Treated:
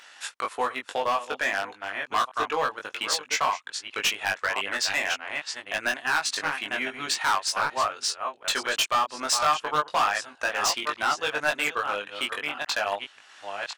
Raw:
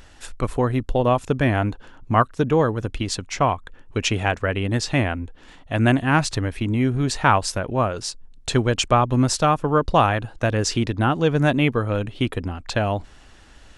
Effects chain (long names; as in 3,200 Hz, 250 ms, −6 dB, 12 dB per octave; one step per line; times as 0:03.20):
delay that plays each chunk backwards 574 ms, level −9.5 dB
high-pass filter 1,100 Hz 12 dB per octave
high-shelf EQ 8,100 Hz −9 dB
transient designer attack 0 dB, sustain −7 dB
in parallel at −3 dB: downward compressor, threshold −29 dBFS, peak gain reduction 14 dB
on the sum: hard clipping −20 dBFS, distortion −8 dB
double-tracking delay 20 ms −3 dB